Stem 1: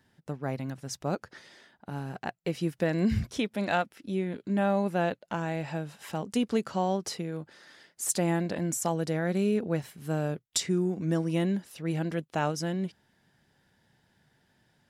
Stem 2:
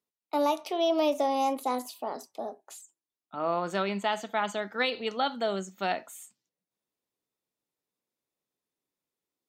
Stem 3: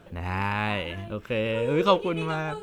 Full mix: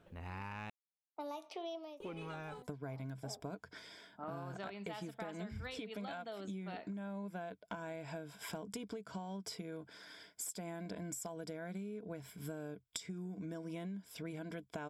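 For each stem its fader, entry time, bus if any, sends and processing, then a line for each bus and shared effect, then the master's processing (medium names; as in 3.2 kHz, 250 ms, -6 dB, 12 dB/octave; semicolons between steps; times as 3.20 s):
-2.0 dB, 2.40 s, no send, rippled EQ curve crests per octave 1.7, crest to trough 11 dB; compression, threshold -26 dBFS, peak gain reduction 8 dB
-7.0 dB, 0.85 s, no send, level-controlled noise filter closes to 530 Hz, open at -25.5 dBFS; auto duck -22 dB, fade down 0.25 s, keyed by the third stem
-14.0 dB, 0.00 s, muted 0.70–2.00 s, no send, saturation -15 dBFS, distortion -15 dB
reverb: none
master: compression 10:1, threshold -41 dBFS, peak gain reduction 15 dB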